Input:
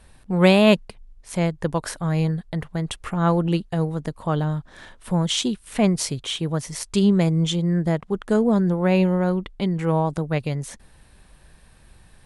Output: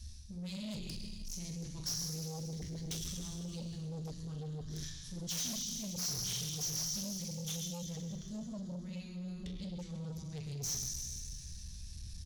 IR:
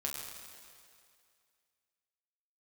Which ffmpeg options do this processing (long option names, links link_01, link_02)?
-filter_complex "[0:a]bandreject=frequency=1400:width=13,areverse,acompressor=threshold=-32dB:ratio=16,areverse,firequalizer=gain_entry='entry(110,0);entry(450,-30);entry(5800,3);entry(8500,-21)':delay=0.05:min_phase=1,asoftclip=type=tanh:threshold=-29.5dB[link_01];[1:a]atrim=start_sample=2205[link_02];[link_01][link_02]afir=irnorm=-1:irlink=0,asplit=2[link_03][link_04];[link_04]aeval=exprs='0.0335*sin(PI/2*4.47*val(0)/0.0335)':channel_layout=same,volume=-9dB[link_05];[link_03][link_05]amix=inputs=2:normalize=0,aemphasis=mode=production:type=75fm,acrossover=split=6900[link_06][link_07];[link_07]acompressor=threshold=-40dB:ratio=4:attack=1:release=60[link_08];[link_06][link_08]amix=inputs=2:normalize=0,volume=-4.5dB"